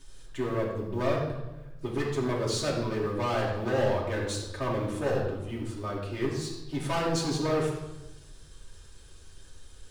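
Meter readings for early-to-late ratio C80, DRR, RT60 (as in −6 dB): 5.5 dB, −5.5 dB, 1.0 s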